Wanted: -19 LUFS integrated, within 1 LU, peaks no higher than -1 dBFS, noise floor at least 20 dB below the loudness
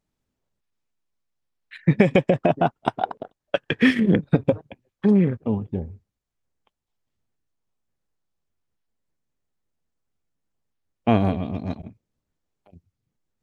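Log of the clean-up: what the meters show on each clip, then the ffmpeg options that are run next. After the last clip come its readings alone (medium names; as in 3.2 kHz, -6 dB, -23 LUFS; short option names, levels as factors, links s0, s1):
loudness -22.5 LUFS; peak level -1.0 dBFS; loudness target -19.0 LUFS
-> -af "volume=1.5,alimiter=limit=0.891:level=0:latency=1"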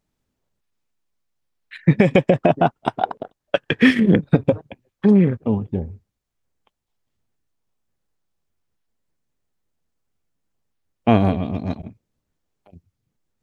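loudness -19.0 LUFS; peak level -1.0 dBFS; noise floor -79 dBFS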